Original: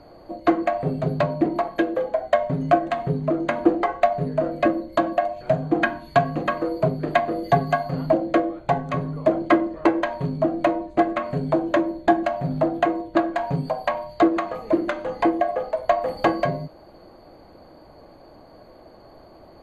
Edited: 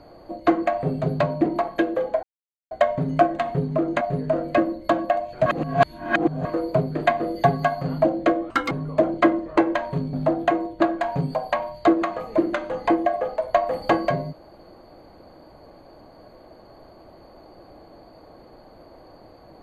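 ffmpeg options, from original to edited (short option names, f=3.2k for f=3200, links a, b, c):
-filter_complex "[0:a]asplit=8[a][b][c][d][e][f][g][h];[a]atrim=end=2.23,asetpts=PTS-STARTPTS,afade=t=out:st=2.226:d=0.004:c=hsin,apad=pad_dur=0.48[i];[b]atrim=start=2.23:end=3.532,asetpts=PTS-STARTPTS,afade=t=in:d=0.004:c=hsin[j];[c]atrim=start=4.088:end=5.542[k];[d]atrim=start=5.538:end=6.532,asetpts=PTS-STARTPTS,areverse[l];[e]atrim=start=6.528:end=8.584[m];[f]atrim=start=8.58:end=8.99,asetpts=PTS-STARTPTS,asetrate=85554,aresample=44100,atrim=end_sample=9320,asetpts=PTS-STARTPTS[n];[g]atrim=start=8.986:end=10.412[o];[h]atrim=start=12.478[p];[i][j]concat=n=2:v=0:a=1[q];[q][k]acrossfade=d=0.004:c1=hsin:c2=hsin[r];[r][l]acrossfade=d=0.004:c1=hsin:c2=hsin[s];[s][m]acrossfade=d=0.004:c1=hsin:c2=hsin[t];[t][n]acrossfade=d=0.004:c1=hsin:c2=hsin[u];[u][o]acrossfade=d=0.004:c1=hsin:c2=hsin[v];[v][p]acrossfade=d=0.004:c1=hsin:c2=hsin"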